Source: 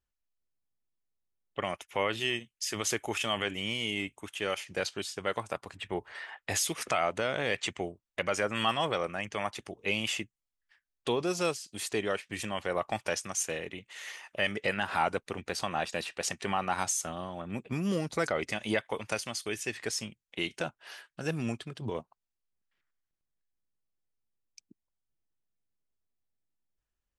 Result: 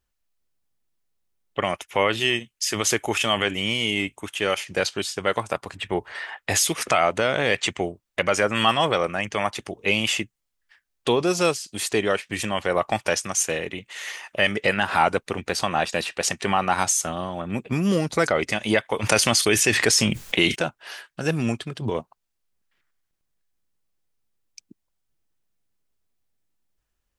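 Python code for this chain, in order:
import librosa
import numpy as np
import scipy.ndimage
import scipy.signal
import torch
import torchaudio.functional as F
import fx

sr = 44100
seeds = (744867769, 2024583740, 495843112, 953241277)

y = fx.env_flatten(x, sr, amount_pct=70, at=(19.02, 20.54), fade=0.02)
y = F.gain(torch.from_numpy(y), 9.0).numpy()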